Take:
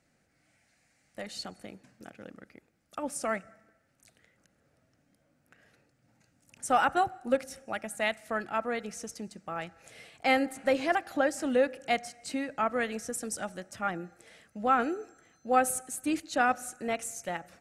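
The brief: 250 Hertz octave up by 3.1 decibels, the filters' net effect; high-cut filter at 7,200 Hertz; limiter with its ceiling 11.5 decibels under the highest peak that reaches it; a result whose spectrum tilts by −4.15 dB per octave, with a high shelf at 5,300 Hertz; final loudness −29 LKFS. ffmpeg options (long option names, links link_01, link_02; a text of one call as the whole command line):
ffmpeg -i in.wav -af "lowpass=7200,equalizer=frequency=250:width_type=o:gain=3.5,highshelf=frequency=5300:gain=-3,volume=6.5dB,alimiter=limit=-16.5dB:level=0:latency=1" out.wav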